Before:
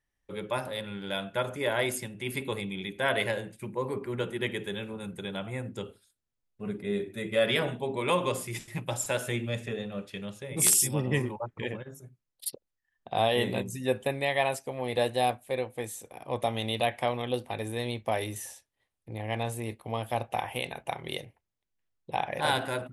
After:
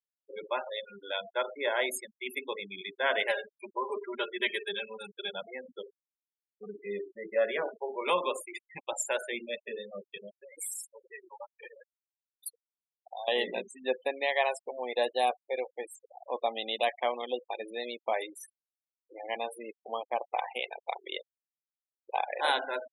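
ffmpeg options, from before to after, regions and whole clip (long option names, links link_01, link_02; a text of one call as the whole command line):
ffmpeg -i in.wav -filter_complex "[0:a]asettb=1/sr,asplit=3[link_01][link_02][link_03];[link_01]atrim=end=3.284[link_04];[link_02]atrim=start=3.28:end=5.31,asetpts=PTS-STARTPTS,afade=type=in:duration=0.004:curve=qsin,afade=type=out:start_time=2.026:duration=0.004:curve=qsin,highpass=frequency=320:poles=1,highshelf=frequency=2900:gain=5,aecho=1:1:5:0.86,atrim=end_sample=89523[link_05];[link_03]atrim=start=5.306[link_06];[link_04][link_05]acrossfade=duration=0.004:curve1=hsin:curve2=qsin[link_07];[link_07][link_06]acrossfade=duration=0.004:curve1=qsin:curve2=hsin,asettb=1/sr,asplit=3[link_08][link_09][link_10];[link_08]atrim=end=7.174[link_11];[link_09]atrim=start=7.17:end=8.06,asetpts=PTS-STARTPTS,afade=type=in:duration=0.004:curve=qsin,afade=type=out:start_time=0.886:duration=0.004:curve=qsin,lowpass=1700,equalizer=frequency=260:width=7.7:gain=-9[link_12];[link_10]atrim=start=8.056[link_13];[link_11][link_12]acrossfade=duration=0.004:curve1=hsin:curve2=qsin[link_14];[link_14][link_13]acrossfade=duration=0.004:curve1=qsin:curve2=hsin,asettb=1/sr,asplit=3[link_15][link_16][link_17];[link_15]atrim=end=10.354[link_18];[link_16]atrim=start=10.35:end=13.28,asetpts=PTS-STARTPTS,afade=type=in:duration=0.004:curve=qsin,afade=type=out:start_time=2.926:duration=0.004:curve=qsin,acompressor=threshold=-32dB:ratio=3:attack=3.2:release=140:knee=1:detection=peak,highpass=frequency=890:poles=1,adynamicequalizer=threshold=0.002:dfrequency=1900:dqfactor=0.7:tfrequency=1900:tqfactor=0.7:attack=5:release=100:ratio=0.375:range=3.5:mode=cutabove:tftype=highshelf[link_19];[link_17]atrim=start=13.276[link_20];[link_18][link_19]acrossfade=duration=0.004:curve1=hsin:curve2=qsin[link_21];[link_21][link_20]acrossfade=duration=0.004:curve1=qsin:curve2=hsin,highpass=440,afftfilt=real='re*gte(hypot(re,im),0.0224)':imag='im*gte(hypot(re,im),0.0224)':win_size=1024:overlap=0.75" out.wav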